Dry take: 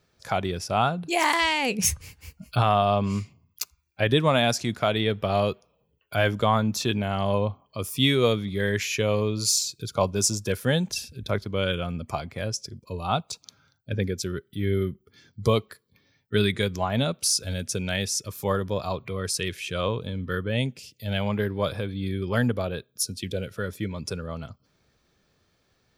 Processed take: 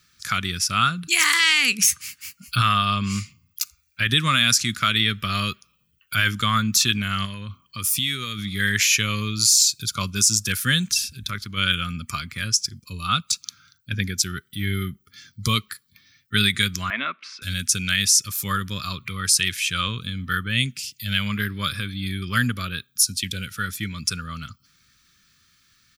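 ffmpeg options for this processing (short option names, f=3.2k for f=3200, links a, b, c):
-filter_complex "[0:a]asettb=1/sr,asplit=3[a][b][c];[a]atrim=end=1.074[d];[b]atrim=start=1.07:end=2.48,asetpts=PTS-STARTPTS,afade=t=in:d=0.004:c=qsin,afade=t=out:st=1.406:d=0.004:c=qsin,highpass=230[e];[c]atrim=start=2.476[f];[d][e]acrossfade=d=0.004:c1=hsin:c2=qsin[g];[g][f]acrossfade=d=0.004:c1=qsin:c2=hsin,asettb=1/sr,asplit=3[h][i][j];[h]atrim=end=7.254[k];[i]atrim=start=7.25:end=8.39,asetpts=PTS-STARTPTS,afade=t=in:d=0.004:c=qsin,afade=t=out:st=1.136:d=0.004:c=qsin,acompressor=threshold=-26dB:ratio=6:attack=3.2:release=140:knee=1:detection=peak[l];[j]atrim=start=8.386[m];[k][l]acrossfade=d=0.004:c1=hsin:c2=qsin[n];[n][m]acrossfade=d=0.004:c1=qsin:c2=hsin,asplit=3[o][p][q];[o]afade=t=out:st=10.87:d=0.02[r];[p]acompressor=threshold=-34dB:ratio=1.5:attack=3.2:release=140:knee=1:detection=peak,afade=t=in:st=10.87:d=0.02,afade=t=out:st=11.56:d=0.02[s];[q]afade=t=in:st=11.56:d=0.02[t];[r][s][t]amix=inputs=3:normalize=0,asettb=1/sr,asplit=3[u][v][w];[u]atrim=end=16.904[x];[v]atrim=start=16.9:end=17.42,asetpts=PTS-STARTPTS,afade=t=in:d=0.004:c=qsin,afade=t=out:st=0.516:d=0.004:c=qsin,highpass=f=300:w=0.5412,highpass=f=300:w=1.3066,equalizer=f=480:t=q:w=4:g=-4,equalizer=f=680:t=q:w=4:g=10,equalizer=f=1k:t=q:w=4:g=10,equalizer=f=2.1k:t=q:w=4:g=7,lowpass=f=2.4k:w=0.5412,lowpass=f=2.4k:w=1.3066[y];[w]atrim=start=17.416[z];[x][y]acrossfade=d=0.004:c1=hsin:c2=qsin[aa];[aa][z]acrossfade=d=0.004:c1=qsin:c2=hsin,firequalizer=gain_entry='entry(220,0);entry(460,-16);entry(810,-21);entry(1200,7);entry(6600,13)':delay=0.05:min_phase=1,alimiter=level_in=6dB:limit=-1dB:release=50:level=0:latency=1,volume=-5dB"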